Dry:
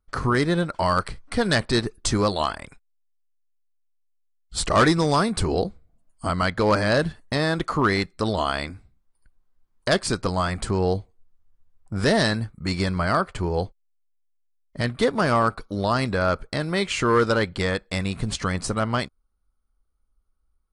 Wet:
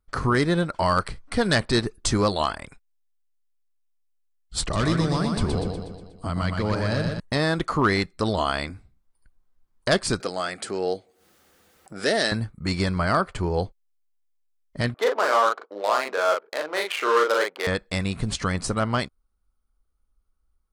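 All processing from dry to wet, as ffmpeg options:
ffmpeg -i in.wav -filter_complex "[0:a]asettb=1/sr,asplit=3[link_01][link_02][link_03];[link_01]atrim=end=4.614[link_04];[link_02]atrim=start=4.61:end=7.2,asetpts=PTS-STARTPTS,afade=type=in:duration=0.004:curve=qsin,afade=type=out:start_time=2.586:duration=0.004:curve=qsin,highshelf=frequency=4700:gain=-11,acrossover=split=230|3000[link_05][link_06][link_07];[link_06]acompressor=threshold=-33dB:ratio=2:attack=3.2:release=140:knee=2.83:detection=peak[link_08];[link_05][link_08][link_07]amix=inputs=3:normalize=0,aecho=1:1:121|242|363|484|605|726|847:0.596|0.322|0.174|0.0938|0.0506|0.0274|0.0148,atrim=end_sample=114219[link_09];[link_03]atrim=start=7.196[link_10];[link_04][link_09]acrossfade=duration=0.004:curve1=hsin:curve2=qsin[link_11];[link_11][link_10]acrossfade=duration=0.004:curve1=qsin:curve2=hsin,asettb=1/sr,asplit=3[link_12][link_13][link_14];[link_12]atrim=end=10.204[link_15];[link_13]atrim=start=10.2:end=12.32,asetpts=PTS-STARTPTS,afade=type=in:duration=0.004:curve=qsin,afade=type=out:start_time=2.116:duration=0.004:curve=qsin,highpass=360,equalizer=frequency=1000:width=3.8:gain=-12,acompressor=mode=upward:threshold=-35dB:ratio=2.5:attack=3.2:release=140:knee=2.83:detection=peak[link_16];[link_14]atrim=start=12.316[link_17];[link_15][link_16]acrossfade=duration=0.004:curve1=hsin:curve2=qsin[link_18];[link_18][link_17]acrossfade=duration=0.004:curve1=qsin:curve2=hsin,asettb=1/sr,asplit=3[link_19][link_20][link_21];[link_19]atrim=end=14.944[link_22];[link_20]atrim=start=14.94:end=17.67,asetpts=PTS-STARTPTS,afade=type=in:duration=0.004:curve=qsin,afade=type=out:start_time=2.726:duration=0.004:curve=qsin,adynamicsmooth=sensitivity=2.5:basefreq=690,highpass=frequency=430:width=0.5412,highpass=frequency=430:width=1.3066,asplit=2[link_23][link_24];[link_24]adelay=39,volume=-3dB[link_25];[link_23][link_25]amix=inputs=2:normalize=0,atrim=end_sample=120393[link_26];[link_21]atrim=start=17.666[link_27];[link_22][link_26]acrossfade=duration=0.004:curve1=hsin:curve2=qsin[link_28];[link_28][link_27]acrossfade=duration=0.004:curve1=qsin:curve2=hsin" out.wav

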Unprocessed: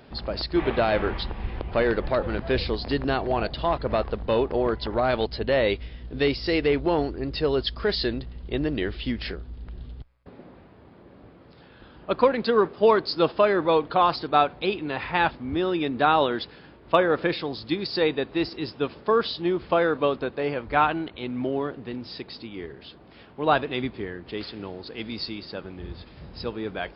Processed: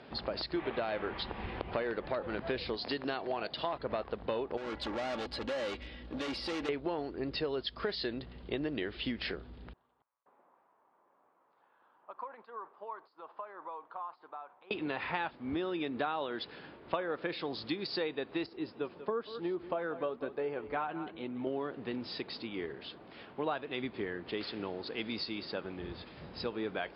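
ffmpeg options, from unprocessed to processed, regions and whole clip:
ffmpeg -i in.wav -filter_complex "[0:a]asettb=1/sr,asplit=3[link_01][link_02][link_03];[link_01]atrim=end=2.774[link_04];[link_02]atrim=start=2.77:end=3.73,asetpts=PTS-STARTPTS,afade=type=in:duration=0.004:curve=qsin,afade=type=out:start_time=0.956:duration=0.004:curve=qsin,highpass=frequency=170:poles=1,aemphasis=mode=production:type=50fm[link_05];[link_03]atrim=start=3.726[link_06];[link_04][link_05]acrossfade=duration=0.004:curve1=hsin:curve2=qsin[link_07];[link_07][link_06]acrossfade=duration=0.004:curve1=qsin:curve2=hsin,asettb=1/sr,asplit=3[link_08][link_09][link_10];[link_08]atrim=end=4.574[link_11];[link_09]atrim=start=4.57:end=6.69,asetpts=PTS-STARTPTS,afade=type=in:duration=0.004:curve=qsin,afade=type=out:start_time=2.116:duration=0.004:curve=qsin,volume=32dB,asoftclip=hard,volume=-32dB,aecho=1:1:3.6:0.45,atrim=end_sample=93492[link_12];[link_10]atrim=start=6.686[link_13];[link_11][link_12]acrossfade=duration=0.004:curve1=hsin:curve2=qsin[link_14];[link_14][link_13]acrossfade=duration=0.004:curve1=qsin:curve2=hsin,asettb=1/sr,asplit=3[link_15][link_16][link_17];[link_15]atrim=end=9.734[link_18];[link_16]atrim=start=9.73:end=14.71,asetpts=PTS-STARTPTS,afade=type=in:duration=0.004:curve=qsin,afade=type=out:start_time=4.976:duration=0.004:curve=qsin,aderivative,acompressor=threshold=-43dB:ratio=6:attack=3.2:release=140:knee=1:detection=peak,lowpass=frequency=1000:width_type=q:width=3[link_19];[link_17]atrim=start=14.706[link_20];[link_18][link_19]acrossfade=duration=0.004:curve1=hsin:curve2=qsin[link_21];[link_21][link_20]acrossfade=duration=0.004:curve1=qsin:curve2=hsin,asettb=1/sr,asplit=3[link_22][link_23][link_24];[link_22]atrim=end=18.464[link_25];[link_23]atrim=start=18.46:end=21.47,asetpts=PTS-STARTPTS,afade=type=in:duration=0.004:curve=qsin,afade=type=out:start_time=3.006:duration=0.004:curve=qsin,highshelf=frequency=2000:gain=-10,flanger=delay=2.2:depth=3.4:regen=57:speed=1:shape=sinusoidal,aecho=1:1:187:0.15,atrim=end_sample=132741[link_26];[link_24]atrim=start=21.466[link_27];[link_25][link_26]acrossfade=duration=0.004:curve1=hsin:curve2=qsin[link_28];[link_28][link_27]acrossfade=duration=0.004:curve1=qsin:curve2=hsin,highpass=frequency=250:poles=1,acompressor=threshold=-32dB:ratio=6,lowpass=4600" out.wav

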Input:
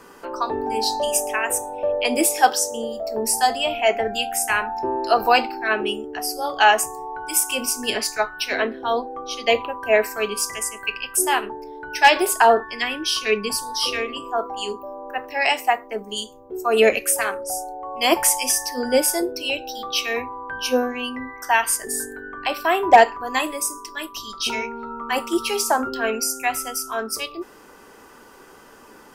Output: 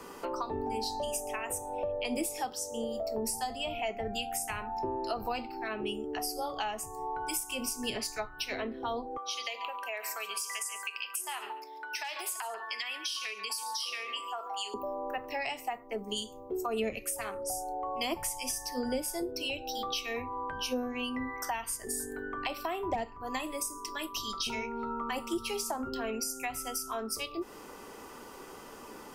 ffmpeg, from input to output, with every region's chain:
ffmpeg -i in.wav -filter_complex "[0:a]asettb=1/sr,asplit=3[link_01][link_02][link_03];[link_01]atrim=end=9.174[link_04];[link_02]atrim=start=9.17:end=14.74,asetpts=PTS-STARTPTS,afade=type=in:duration=0.004:curve=qsin,afade=type=out:start_time=5.566:duration=0.004:curve=qsin,acompressor=threshold=-26dB:ratio=6:attack=3.2:release=140:knee=1:detection=peak,highpass=1000,aecho=1:1:140:0.188,atrim=end_sample=245637[link_05];[link_03]atrim=start=14.736[link_06];[link_04][link_05]acrossfade=duration=0.004:curve1=hsin:curve2=qsin[link_07];[link_07][link_06]acrossfade=duration=0.004:curve1=qsin:curve2=hsin,acrossover=split=170[link_08][link_09];[link_09]acompressor=threshold=-32dB:ratio=10[link_10];[link_08][link_10]amix=inputs=2:normalize=0,equalizer=frequency=1600:width=6.2:gain=-9" out.wav

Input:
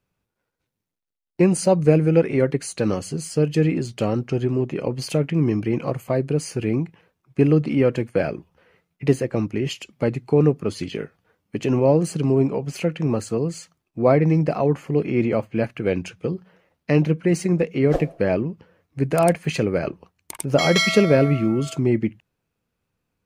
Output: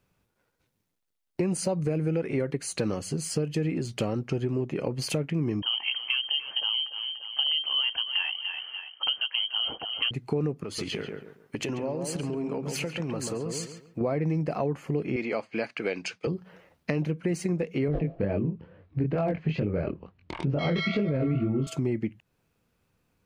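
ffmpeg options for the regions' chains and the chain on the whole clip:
ffmpeg -i in.wav -filter_complex "[0:a]asettb=1/sr,asplit=3[link_01][link_02][link_03];[link_01]atrim=end=5.624[link_04];[link_02]atrim=start=5.62:end=10.11,asetpts=PTS-STARTPTS,afade=type=in:duration=0.004:curve=qsin,afade=type=out:start_time=4.486:duration=0.004:curve=qsin,aecho=1:1:292|584|876:0.188|0.0697|0.0258,atrim=end_sample=198009,lowpass=frequency=2800:width_type=q:width=0.5098,lowpass=frequency=2800:width_type=q:width=0.6013,lowpass=frequency=2800:width_type=q:width=0.9,lowpass=frequency=2800:width_type=q:width=2.563,afreqshift=-3300[link_05];[link_03]atrim=start=10.106[link_06];[link_04][link_05]acrossfade=duration=0.004:curve1=hsin:curve2=qsin[link_07];[link_07][link_06]acrossfade=duration=0.004:curve1=qsin:curve2=hsin,asettb=1/sr,asplit=3[link_08][link_09][link_10];[link_08]atrim=end=10.644[link_11];[link_09]atrim=start=10.64:end=14.01,asetpts=PTS-STARTPTS,afade=type=in:duration=0.004:curve=qsin,afade=type=out:start_time=3.366:duration=0.004:curve=qsin,lowshelf=frequency=470:gain=-7.5,acompressor=threshold=-31dB:ratio=3:attack=3.2:release=140:knee=1:detection=peak,asplit=2[link_12][link_13];[link_13]adelay=138,lowpass=frequency=1600:poles=1,volume=-5dB,asplit=2[link_14][link_15];[link_15]adelay=138,lowpass=frequency=1600:poles=1,volume=0.31,asplit=2[link_16][link_17];[link_17]adelay=138,lowpass=frequency=1600:poles=1,volume=0.31,asplit=2[link_18][link_19];[link_19]adelay=138,lowpass=frequency=1600:poles=1,volume=0.31[link_20];[link_12][link_14][link_16][link_18][link_20]amix=inputs=5:normalize=0,atrim=end_sample=148617[link_21];[link_10]atrim=start=14.006[link_22];[link_11][link_21]acrossfade=duration=0.004:curve1=hsin:curve2=qsin[link_23];[link_23][link_22]acrossfade=duration=0.004:curve1=qsin:curve2=hsin,asettb=1/sr,asplit=3[link_24][link_25][link_26];[link_24]atrim=end=15.164[link_27];[link_25]atrim=start=15.16:end=16.27,asetpts=PTS-STARTPTS,afade=type=in:duration=0.004:curve=qsin,afade=type=out:start_time=1.106:duration=0.004:curve=qsin,agate=range=-33dB:threshold=-48dB:ratio=3:release=100:detection=peak,highpass=350,equalizer=frequency=350:width_type=q:width=4:gain=-4,equalizer=frequency=550:width_type=q:width=4:gain=-4,equalizer=frequency=2200:width_type=q:width=4:gain=4,equalizer=frequency=4600:width_type=q:width=4:gain=9,lowpass=frequency=8700:width=0.5412,lowpass=frequency=8700:width=1.3066[link_28];[link_26]atrim=start=16.266[link_29];[link_27][link_28]acrossfade=duration=0.004:curve1=hsin:curve2=qsin[link_30];[link_30][link_29]acrossfade=duration=0.004:curve1=qsin:curve2=hsin,asettb=1/sr,asplit=3[link_31][link_32][link_33];[link_31]atrim=end=17.884[link_34];[link_32]atrim=start=17.88:end=21.67,asetpts=PTS-STARTPTS,afade=type=in:duration=0.004:curve=qsin,afade=type=out:start_time=3.786:duration=0.004:curve=qsin,lowpass=frequency=3900:width=0.5412,lowpass=frequency=3900:width=1.3066,lowshelf=frequency=390:gain=11,flanger=delay=19.5:depth=5.8:speed=2.2[link_35];[link_33]atrim=start=21.666[link_36];[link_34][link_35]acrossfade=duration=0.004:curve1=hsin:curve2=qsin[link_37];[link_37][link_36]acrossfade=duration=0.004:curve1=qsin:curve2=hsin,alimiter=limit=-9.5dB:level=0:latency=1:release=52,acompressor=threshold=-34dB:ratio=3,volume=5dB" out.wav

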